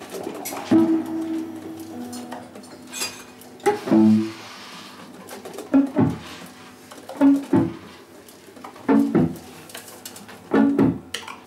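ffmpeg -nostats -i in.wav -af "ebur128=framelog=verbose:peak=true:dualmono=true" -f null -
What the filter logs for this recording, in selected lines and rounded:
Integrated loudness:
  I:         -18.2 LUFS
  Threshold: -30.7 LUFS
Loudness range:
  LRA:         3.2 LU
  Threshold: -40.8 LUFS
  LRA low:   -22.8 LUFS
  LRA high:  -19.5 LUFS
True peak:
  Peak:       -6.5 dBFS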